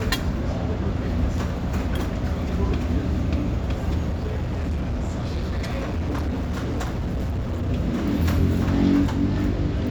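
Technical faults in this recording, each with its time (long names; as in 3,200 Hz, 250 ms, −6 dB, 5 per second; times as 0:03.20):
0:04.09–0:07.70: clipping −22 dBFS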